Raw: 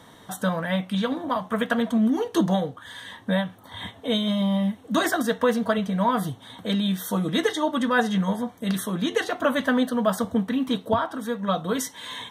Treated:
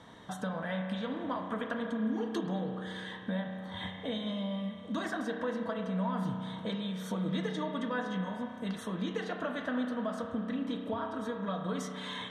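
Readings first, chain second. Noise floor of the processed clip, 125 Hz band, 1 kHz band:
-45 dBFS, -9.0 dB, -11.5 dB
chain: compressor, threshold -29 dBFS, peak gain reduction 12.5 dB; air absorption 71 m; spring tank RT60 2.5 s, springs 32 ms, chirp 80 ms, DRR 3.5 dB; gain -4 dB

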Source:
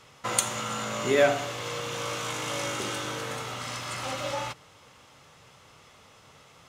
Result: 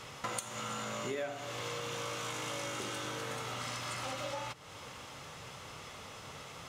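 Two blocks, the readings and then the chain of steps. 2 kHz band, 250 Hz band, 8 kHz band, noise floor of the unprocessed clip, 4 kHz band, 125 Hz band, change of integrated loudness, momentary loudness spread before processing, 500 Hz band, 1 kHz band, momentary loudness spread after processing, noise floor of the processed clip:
-8.5 dB, -9.0 dB, -9.5 dB, -55 dBFS, -7.0 dB, -6.5 dB, -10.5 dB, 11 LU, -11.5 dB, -7.5 dB, 9 LU, -49 dBFS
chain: compressor 6:1, threshold -44 dBFS, peak gain reduction 25 dB; gain +6.5 dB

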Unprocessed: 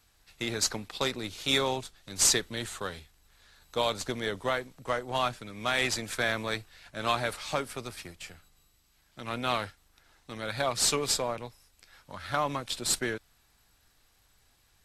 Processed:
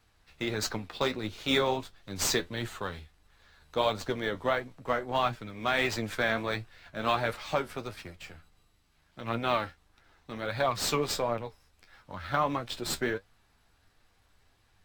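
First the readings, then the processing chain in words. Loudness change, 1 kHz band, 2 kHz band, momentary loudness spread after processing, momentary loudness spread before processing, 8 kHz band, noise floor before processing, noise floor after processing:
-1.0 dB, +1.5 dB, 0.0 dB, 14 LU, 16 LU, -8.0 dB, -67 dBFS, -68 dBFS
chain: high shelf 4100 Hz -10 dB; flange 1.5 Hz, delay 8.3 ms, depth 5.3 ms, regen +50%; decimation joined by straight lines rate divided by 2×; gain +6 dB

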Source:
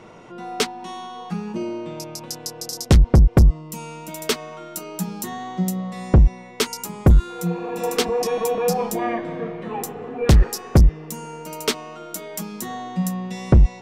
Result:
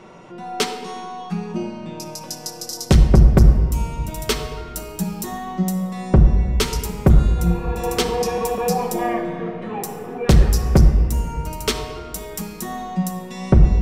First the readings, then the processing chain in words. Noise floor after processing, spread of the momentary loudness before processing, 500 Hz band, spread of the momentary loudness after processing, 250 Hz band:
-36 dBFS, 16 LU, +0.5 dB, 15 LU, +2.5 dB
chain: shoebox room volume 2400 m³, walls mixed, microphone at 1.1 m

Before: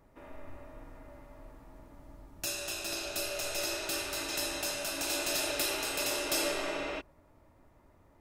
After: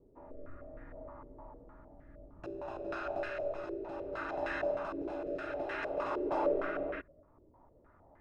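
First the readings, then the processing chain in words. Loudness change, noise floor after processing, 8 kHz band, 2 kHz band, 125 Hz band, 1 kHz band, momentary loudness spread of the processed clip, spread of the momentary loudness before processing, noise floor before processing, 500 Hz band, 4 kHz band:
-4.5 dB, -64 dBFS, under -35 dB, -5.5 dB, -2.0 dB, +1.5 dB, 20 LU, 21 LU, -63 dBFS, +3.0 dB, -23.0 dB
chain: rotary speaker horn 0.6 Hz; stepped low-pass 6.5 Hz 410–1700 Hz; gain -1 dB

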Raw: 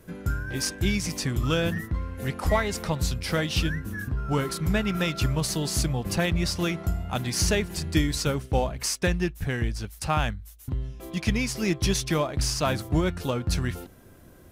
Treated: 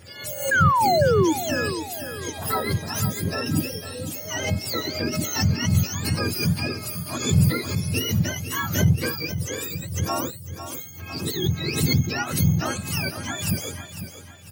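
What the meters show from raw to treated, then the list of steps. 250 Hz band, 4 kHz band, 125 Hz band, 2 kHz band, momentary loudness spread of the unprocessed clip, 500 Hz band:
+1.5 dB, +2.0 dB, +4.0 dB, +3.5 dB, 7 LU, +2.5 dB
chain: spectrum mirrored in octaves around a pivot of 920 Hz; painted sound fall, 0.51–1.33, 300–1700 Hz -19 dBFS; on a send: feedback echo 0.501 s, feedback 41%, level -11 dB; on the sum: backwards sustainer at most 89 dB/s

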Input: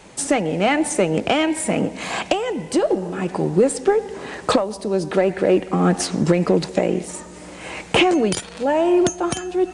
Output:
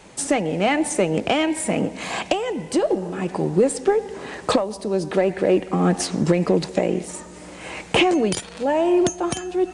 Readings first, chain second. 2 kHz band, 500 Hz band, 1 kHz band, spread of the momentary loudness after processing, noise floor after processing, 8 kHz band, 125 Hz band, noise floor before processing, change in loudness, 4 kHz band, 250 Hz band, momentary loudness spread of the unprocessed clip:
-2.0 dB, -1.5 dB, -2.0 dB, 9 LU, -40 dBFS, -1.5 dB, -1.5 dB, -38 dBFS, -1.5 dB, -1.5 dB, -1.5 dB, 9 LU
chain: dynamic EQ 1400 Hz, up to -4 dB, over -41 dBFS, Q 5.5; gain -1.5 dB

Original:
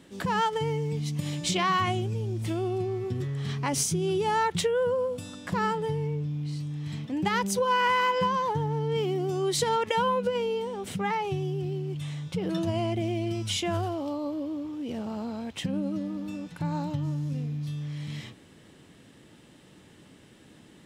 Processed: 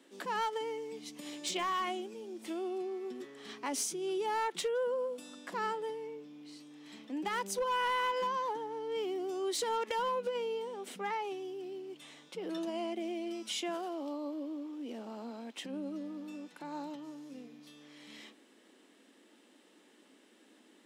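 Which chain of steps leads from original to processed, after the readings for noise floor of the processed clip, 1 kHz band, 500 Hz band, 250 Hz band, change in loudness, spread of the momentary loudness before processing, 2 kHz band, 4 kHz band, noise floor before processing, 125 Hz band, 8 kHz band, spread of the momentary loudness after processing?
-64 dBFS, -7.5 dB, -7.0 dB, -9.5 dB, -8.0 dB, 9 LU, -8.0 dB, -7.5 dB, -54 dBFS, under -30 dB, -7.0 dB, 15 LU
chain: steep high-pass 230 Hz 48 dB/oct; hard clip -21 dBFS, distortion -20 dB; gain -7 dB

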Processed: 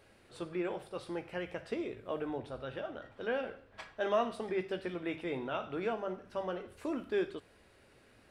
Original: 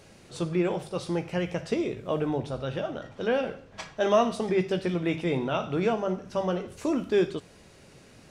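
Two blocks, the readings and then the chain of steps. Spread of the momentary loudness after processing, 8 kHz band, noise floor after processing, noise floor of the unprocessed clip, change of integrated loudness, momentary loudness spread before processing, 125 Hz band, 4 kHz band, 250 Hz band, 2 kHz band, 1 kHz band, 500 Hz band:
9 LU, under -10 dB, -63 dBFS, -54 dBFS, -9.5 dB, 9 LU, -16.0 dB, -9.5 dB, -11.0 dB, -6.0 dB, -8.0 dB, -9.0 dB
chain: fifteen-band EQ 160 Hz -10 dB, 1600 Hz +4 dB, 6300 Hz -10 dB; gain -8.5 dB

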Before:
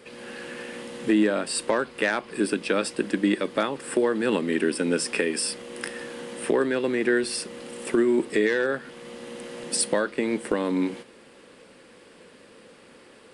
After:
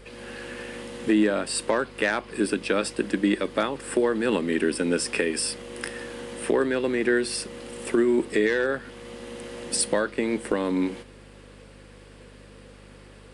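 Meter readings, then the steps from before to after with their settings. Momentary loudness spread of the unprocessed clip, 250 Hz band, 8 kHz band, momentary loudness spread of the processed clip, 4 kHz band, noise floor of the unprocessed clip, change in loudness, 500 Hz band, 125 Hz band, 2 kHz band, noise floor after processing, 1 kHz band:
14 LU, 0.0 dB, 0.0 dB, 14 LU, 0.0 dB, -52 dBFS, 0.0 dB, 0.0 dB, +0.5 dB, 0.0 dB, -48 dBFS, 0.0 dB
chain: hum 50 Hz, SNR 21 dB; de-hum 51.66 Hz, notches 3

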